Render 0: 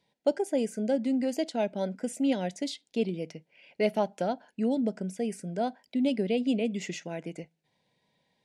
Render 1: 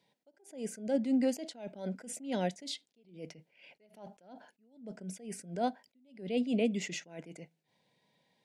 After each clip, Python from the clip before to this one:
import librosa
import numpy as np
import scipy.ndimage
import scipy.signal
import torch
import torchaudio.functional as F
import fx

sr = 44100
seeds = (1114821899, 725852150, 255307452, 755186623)

y = scipy.signal.sosfilt(scipy.signal.butter(2, 110.0, 'highpass', fs=sr, output='sos'), x)
y = fx.attack_slew(y, sr, db_per_s=130.0)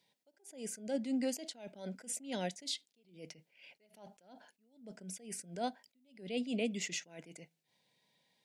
y = fx.high_shelf(x, sr, hz=2100.0, db=9.5)
y = y * 10.0 ** (-6.0 / 20.0)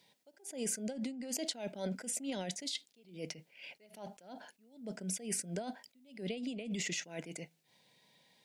y = fx.over_compress(x, sr, threshold_db=-42.0, ratio=-1.0)
y = y * 10.0 ** (4.0 / 20.0)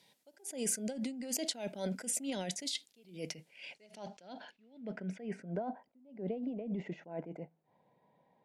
y = fx.filter_sweep_lowpass(x, sr, from_hz=13000.0, to_hz=890.0, start_s=3.3, end_s=5.74, q=1.5)
y = y * 10.0 ** (1.0 / 20.0)